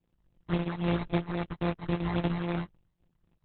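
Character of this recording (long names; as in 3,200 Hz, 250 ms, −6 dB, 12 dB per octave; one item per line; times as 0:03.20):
a buzz of ramps at a fixed pitch in blocks of 256 samples
phaser sweep stages 12, 3.7 Hz, lowest notch 460–3,200 Hz
aliases and images of a low sample rate 3,000 Hz, jitter 0%
Opus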